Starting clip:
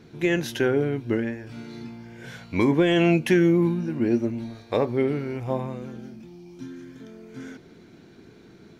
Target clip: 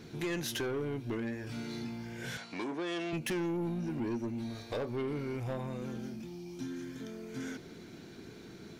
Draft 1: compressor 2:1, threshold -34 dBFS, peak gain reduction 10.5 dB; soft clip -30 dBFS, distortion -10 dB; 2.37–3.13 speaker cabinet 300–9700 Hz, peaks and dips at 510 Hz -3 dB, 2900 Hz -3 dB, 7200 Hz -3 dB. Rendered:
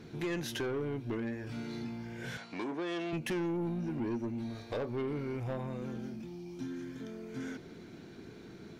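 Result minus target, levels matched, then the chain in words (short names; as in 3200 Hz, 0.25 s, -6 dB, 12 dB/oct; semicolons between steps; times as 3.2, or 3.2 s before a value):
8000 Hz band -5.0 dB
compressor 2:1, threshold -34 dBFS, peak gain reduction 10.5 dB; high shelf 3800 Hz +7.5 dB; soft clip -30 dBFS, distortion -10 dB; 2.37–3.13 speaker cabinet 300–9700 Hz, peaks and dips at 510 Hz -3 dB, 2900 Hz -3 dB, 7200 Hz -3 dB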